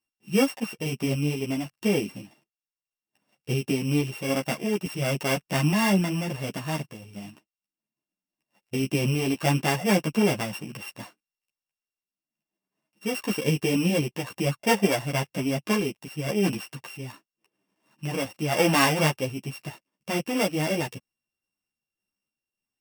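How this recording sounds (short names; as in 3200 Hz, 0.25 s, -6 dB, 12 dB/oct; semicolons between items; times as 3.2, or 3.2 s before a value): a buzz of ramps at a fixed pitch in blocks of 16 samples; random-step tremolo; a shimmering, thickened sound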